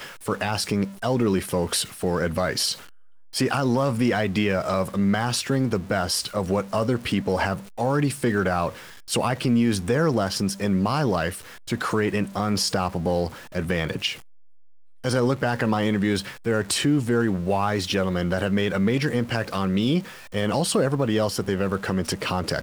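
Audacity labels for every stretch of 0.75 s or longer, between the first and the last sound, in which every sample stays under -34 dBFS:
14.150000	15.040000	silence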